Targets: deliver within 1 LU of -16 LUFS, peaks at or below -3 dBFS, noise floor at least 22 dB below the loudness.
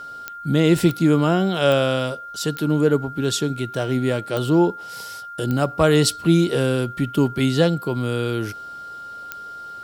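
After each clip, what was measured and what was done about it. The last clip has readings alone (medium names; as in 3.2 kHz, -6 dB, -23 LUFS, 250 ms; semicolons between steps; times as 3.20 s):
clicks found 7; steady tone 1.4 kHz; tone level -33 dBFS; loudness -20.5 LUFS; peak level -4.5 dBFS; loudness target -16.0 LUFS
-> de-click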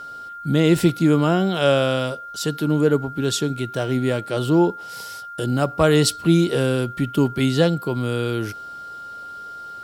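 clicks found 0; steady tone 1.4 kHz; tone level -33 dBFS
-> band-stop 1.4 kHz, Q 30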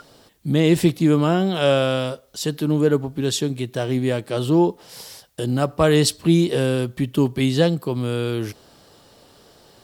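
steady tone not found; loudness -20.5 LUFS; peak level -4.5 dBFS; loudness target -16.0 LUFS
-> trim +4.5 dB; peak limiter -3 dBFS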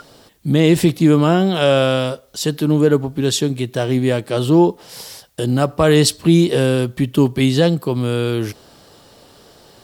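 loudness -16.5 LUFS; peak level -3.0 dBFS; noise floor -48 dBFS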